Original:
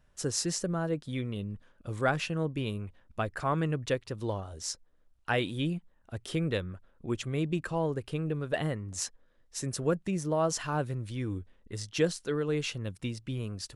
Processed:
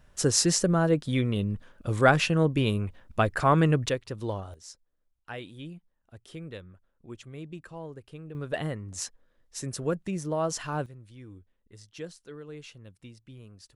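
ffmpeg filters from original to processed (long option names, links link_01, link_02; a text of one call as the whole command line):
ffmpeg -i in.wav -af "asetnsamples=nb_out_samples=441:pad=0,asendcmd='3.89 volume volume 1dB;4.54 volume volume -10.5dB;8.35 volume volume -0.5dB;10.86 volume volume -12.5dB',volume=8dB" out.wav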